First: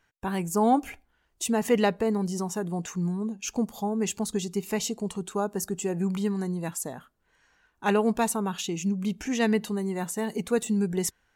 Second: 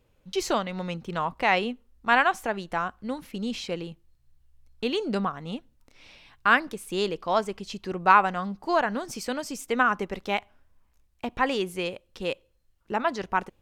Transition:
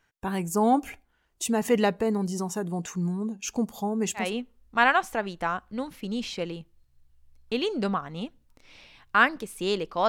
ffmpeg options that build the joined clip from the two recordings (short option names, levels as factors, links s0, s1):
-filter_complex "[0:a]apad=whole_dur=10.08,atrim=end=10.08,atrim=end=4.36,asetpts=PTS-STARTPTS[s0];[1:a]atrim=start=1.45:end=7.39,asetpts=PTS-STARTPTS[s1];[s0][s1]acrossfade=d=0.22:c1=tri:c2=tri"